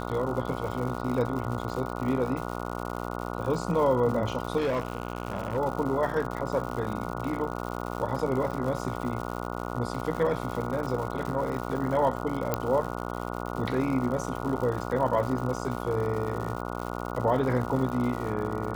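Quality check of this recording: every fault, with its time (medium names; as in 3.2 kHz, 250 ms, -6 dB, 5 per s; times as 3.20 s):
buzz 60 Hz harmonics 24 -34 dBFS
crackle 170 per s -34 dBFS
4.57–5.57 s: clipped -23.5 dBFS
12.54 s: pop -11 dBFS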